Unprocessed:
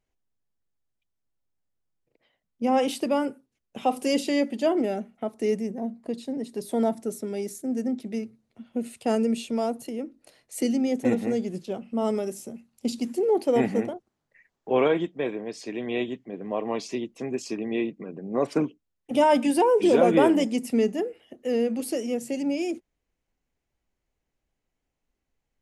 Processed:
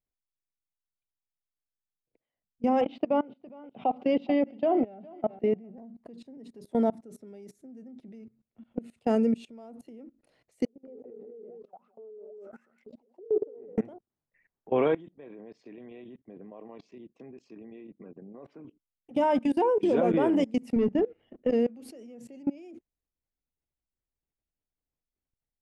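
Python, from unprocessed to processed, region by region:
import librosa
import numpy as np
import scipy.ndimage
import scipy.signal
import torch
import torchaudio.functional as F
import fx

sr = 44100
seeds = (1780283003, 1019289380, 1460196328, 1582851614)

y = fx.chain(x, sr, fx.cabinet(low_hz=100.0, low_slope=24, high_hz=3500.0, hz=(150.0, 720.0, 1700.0), db=(5, 9, -4)),
    fx.echo_feedback(ms=412, feedback_pct=27, wet_db=-19.0), at=(2.81, 5.78))
y = fx.chain(y, sr, fx.auto_wah(base_hz=430.0, top_hz=2300.0, q=18.0, full_db=-22.5, direction='down'),
    fx.echo_single(ms=198, db=-12.0),
    fx.sustainer(db_per_s=41.0), at=(10.65, 13.78))
y = fx.chain(y, sr, fx.highpass(hz=120.0, slope=6),
    fx.air_absorb(metres=110.0),
    fx.level_steps(step_db=10), at=(15.16, 18.65))
y = fx.chain(y, sr, fx.leveller(passes=1),
    fx.lowpass(hz=4000.0, slope=12),
    fx.low_shelf(hz=210.0, db=8.0), at=(20.76, 21.5))
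y = fx.lowpass(y, sr, hz=1900.0, slope=6)
y = fx.low_shelf(y, sr, hz=180.0, db=4.5)
y = fx.level_steps(y, sr, step_db=23)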